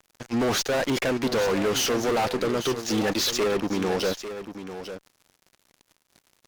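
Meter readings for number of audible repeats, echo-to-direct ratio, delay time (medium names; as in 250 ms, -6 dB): 1, -11.0 dB, 847 ms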